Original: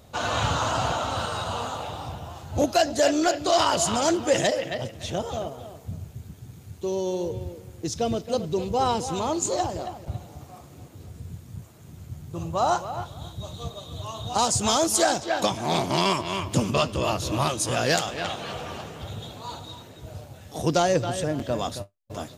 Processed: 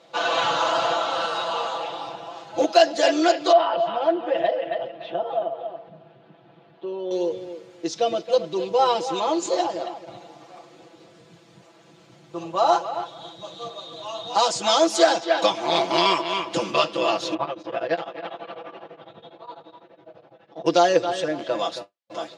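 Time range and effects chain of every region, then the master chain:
3.52–7.11 compressor 1.5:1, threshold -37 dBFS + speaker cabinet 130–3000 Hz, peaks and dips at 150 Hz +5 dB, 700 Hz +8 dB, 2200 Hz -7 dB
17.34–20.66 tape spacing loss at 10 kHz 39 dB + beating tremolo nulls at 12 Hz
whole clip: Chebyshev band-pass 410–4200 Hz, order 2; notch 440 Hz, Q 12; comb 6 ms, depth 96%; gain +2 dB

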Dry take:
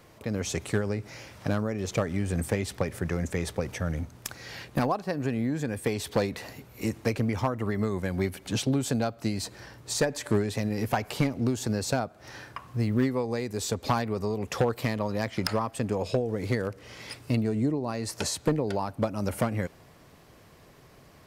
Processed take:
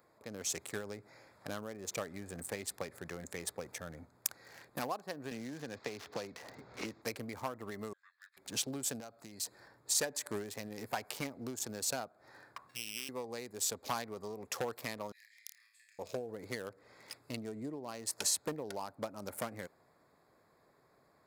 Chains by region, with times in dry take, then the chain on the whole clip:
5.31–7.02 CVSD 32 kbps + three-band squash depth 100%
7.93–8.37 steep high-pass 2200 Hz + air absorption 170 m + frequency shift -480 Hz
9–9.68 high shelf 3000 Hz +5 dB + compressor 5:1, threshold -31 dBFS
12.69–13.09 sample sorter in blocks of 16 samples + weighting filter D + compressor 16:1, threshold -29 dBFS
15.12–15.99 Chebyshev high-pass 1800 Hz, order 6 + compressor 8:1, threshold -44 dBFS + flutter echo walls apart 4.7 m, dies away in 0.56 s
whole clip: Wiener smoothing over 15 samples; RIAA curve recording; gain -9 dB

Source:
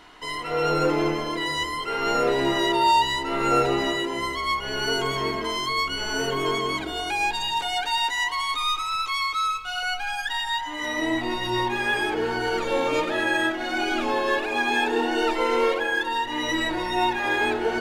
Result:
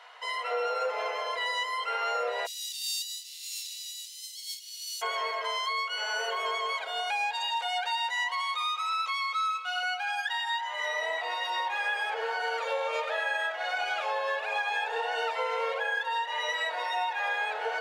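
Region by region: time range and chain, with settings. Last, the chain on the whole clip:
2.45–5.01 spectral contrast lowered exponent 0.58 + inverse Chebyshev band-stop 390–1100 Hz, stop band 80 dB
whole clip: Chebyshev high-pass 480 Hz, order 6; high shelf 6000 Hz -9.5 dB; compressor, threshold -27 dBFS

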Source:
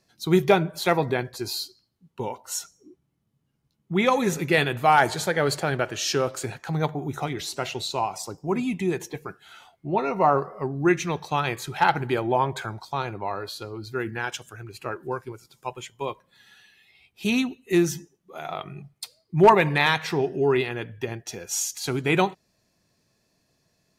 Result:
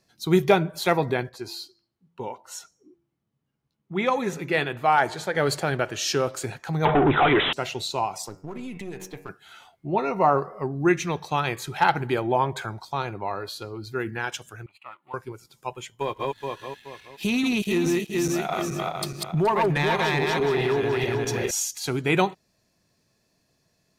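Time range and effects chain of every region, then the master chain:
1.29–5.35 LPF 1400 Hz 6 dB/oct + tilt +2 dB/oct + de-hum 170.1 Hz, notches 2
6.85–7.53 overdrive pedal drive 33 dB, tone 2100 Hz, clips at -9.5 dBFS + careless resampling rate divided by 6×, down none, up filtered
8.28–9.29 half-wave gain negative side -7 dB + de-hum 94.06 Hz, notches 29 + compressor 12:1, threshold -30 dBFS
14.66–15.14 G.711 law mismatch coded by A + band-pass 2000 Hz, Q 0.84 + fixed phaser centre 1600 Hz, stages 6
15.95–21.51 regenerating reverse delay 0.212 s, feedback 57%, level -0.5 dB + compressor 3:1, threshold -24 dBFS + sample leveller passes 1
whole clip: dry

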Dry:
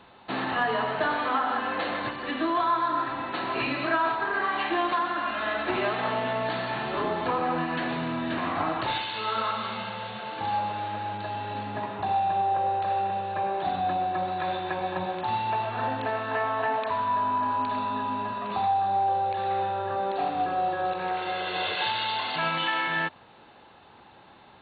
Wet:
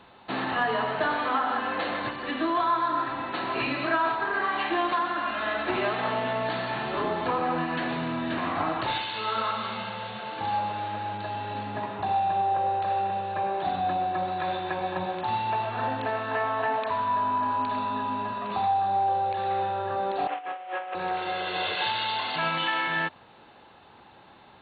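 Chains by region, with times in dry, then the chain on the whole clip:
20.27–20.95 CVSD 16 kbps + HPF 560 Hz + negative-ratio compressor -33 dBFS, ratio -0.5
whole clip: dry

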